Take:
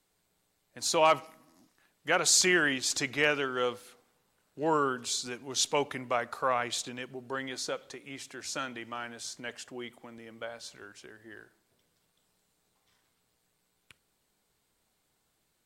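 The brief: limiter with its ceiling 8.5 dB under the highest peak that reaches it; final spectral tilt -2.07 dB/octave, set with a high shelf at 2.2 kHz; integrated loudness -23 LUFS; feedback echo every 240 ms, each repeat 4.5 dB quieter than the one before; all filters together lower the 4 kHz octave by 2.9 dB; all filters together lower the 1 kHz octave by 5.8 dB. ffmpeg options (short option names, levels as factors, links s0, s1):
-af "equalizer=f=1000:t=o:g=-8,highshelf=f=2200:g=3.5,equalizer=f=4000:t=o:g=-7,alimiter=limit=0.1:level=0:latency=1,aecho=1:1:240|480|720|960|1200|1440|1680|1920|2160:0.596|0.357|0.214|0.129|0.0772|0.0463|0.0278|0.0167|0.01,volume=2.99"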